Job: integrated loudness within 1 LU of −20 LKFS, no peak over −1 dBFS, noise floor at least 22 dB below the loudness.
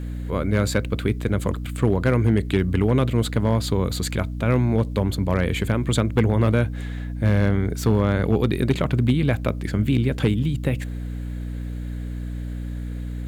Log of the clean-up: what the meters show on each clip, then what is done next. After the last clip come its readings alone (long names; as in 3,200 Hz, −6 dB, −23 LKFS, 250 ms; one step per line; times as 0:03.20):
share of clipped samples 0.6%; peaks flattened at −9.5 dBFS; mains hum 60 Hz; hum harmonics up to 300 Hz; level of the hum −27 dBFS; integrated loudness −23.0 LKFS; sample peak −9.5 dBFS; target loudness −20.0 LKFS
→ clipped peaks rebuilt −9.5 dBFS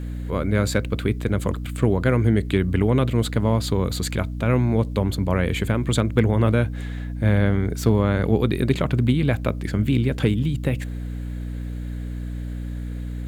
share of clipped samples 0.0%; mains hum 60 Hz; hum harmonics up to 300 Hz; level of the hum −27 dBFS
→ mains-hum notches 60/120/180/240/300 Hz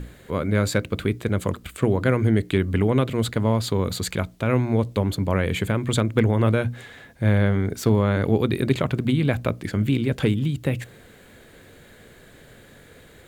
mains hum none found; integrated loudness −23.0 LKFS; sample peak −4.5 dBFS; target loudness −20.0 LKFS
→ level +3 dB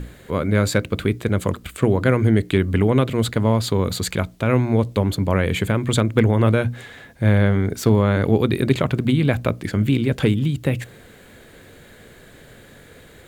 integrated loudness −20.0 LKFS; sample peak −1.5 dBFS; background noise floor −47 dBFS